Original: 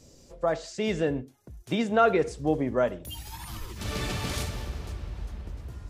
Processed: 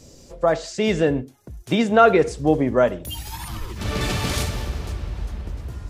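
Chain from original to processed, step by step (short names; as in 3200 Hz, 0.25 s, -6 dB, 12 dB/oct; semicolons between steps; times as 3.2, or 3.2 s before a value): 3.48–4.01 high shelf 3800 Hz -6.5 dB; gain +7.5 dB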